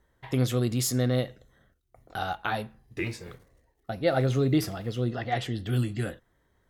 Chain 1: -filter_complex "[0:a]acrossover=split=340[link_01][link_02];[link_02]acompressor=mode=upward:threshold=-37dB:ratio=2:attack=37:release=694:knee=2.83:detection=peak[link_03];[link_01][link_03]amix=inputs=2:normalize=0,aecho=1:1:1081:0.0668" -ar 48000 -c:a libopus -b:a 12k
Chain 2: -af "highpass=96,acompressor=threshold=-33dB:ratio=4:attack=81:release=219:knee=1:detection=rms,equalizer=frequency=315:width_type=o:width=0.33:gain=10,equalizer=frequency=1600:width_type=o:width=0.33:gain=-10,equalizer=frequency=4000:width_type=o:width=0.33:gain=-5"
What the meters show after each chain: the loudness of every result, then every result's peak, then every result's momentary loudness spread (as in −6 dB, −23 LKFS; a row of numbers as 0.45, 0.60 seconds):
−29.5, −33.5 LKFS; −12.0, −14.5 dBFS; 13, 13 LU